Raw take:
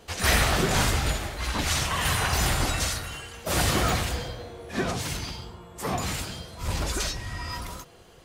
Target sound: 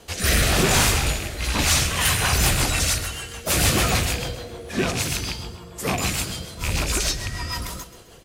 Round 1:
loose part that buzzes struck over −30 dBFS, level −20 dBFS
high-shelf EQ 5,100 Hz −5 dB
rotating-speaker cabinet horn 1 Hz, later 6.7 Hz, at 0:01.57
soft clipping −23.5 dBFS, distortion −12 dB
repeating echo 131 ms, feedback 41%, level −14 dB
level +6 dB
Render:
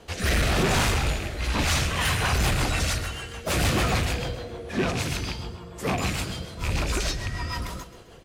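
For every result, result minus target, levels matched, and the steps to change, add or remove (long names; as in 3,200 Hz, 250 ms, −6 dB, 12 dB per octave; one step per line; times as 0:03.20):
8,000 Hz band −5.0 dB; soft clipping: distortion +7 dB
change: high-shelf EQ 5,100 Hz +7 dB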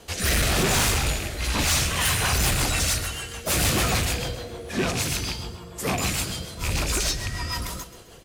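soft clipping: distortion +9 dB
change: soft clipping −16 dBFS, distortion −20 dB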